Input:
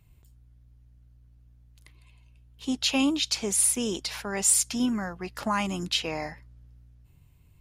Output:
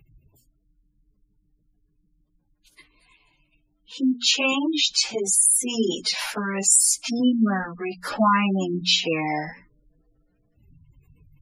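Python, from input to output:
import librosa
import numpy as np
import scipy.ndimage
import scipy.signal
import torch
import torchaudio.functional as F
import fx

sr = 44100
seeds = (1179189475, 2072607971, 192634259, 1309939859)

p1 = fx.peak_eq(x, sr, hz=69.0, db=-9.0, octaves=1.3)
p2 = fx.hum_notches(p1, sr, base_hz=60, count=4)
p3 = fx.stretch_vocoder_free(p2, sr, factor=1.5)
p4 = fx.rider(p3, sr, range_db=4, speed_s=0.5)
p5 = p3 + F.gain(torch.from_numpy(p4), 2.5).numpy()
p6 = fx.spec_gate(p5, sr, threshold_db=-20, keep='strong')
y = F.gain(torch.from_numpy(p6), 1.5).numpy()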